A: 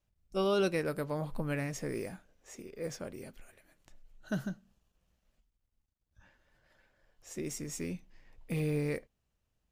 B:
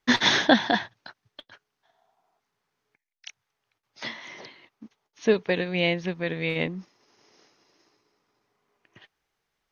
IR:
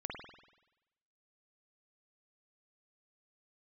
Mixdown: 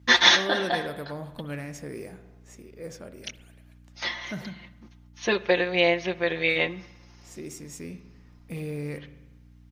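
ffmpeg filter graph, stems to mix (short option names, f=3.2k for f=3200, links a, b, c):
-filter_complex "[0:a]volume=-3.5dB,asplit=3[a][b][c];[b]volume=-6.5dB[d];[1:a]equalizer=f=160:t=o:w=1.7:g=-14.5,aecho=1:1:5.7:0.82,aeval=exprs='val(0)+0.00224*(sin(2*PI*60*n/s)+sin(2*PI*2*60*n/s)/2+sin(2*PI*3*60*n/s)/3+sin(2*PI*4*60*n/s)/4+sin(2*PI*5*60*n/s)/5)':c=same,volume=2dB,asplit=2[e][f];[f]volume=-15dB[g];[c]apad=whole_len=428669[h];[e][h]sidechaincompress=threshold=-44dB:ratio=8:attack=16:release=152[i];[2:a]atrim=start_sample=2205[j];[d][g]amix=inputs=2:normalize=0[k];[k][j]afir=irnorm=-1:irlink=0[l];[a][i][l]amix=inputs=3:normalize=0,highpass=48"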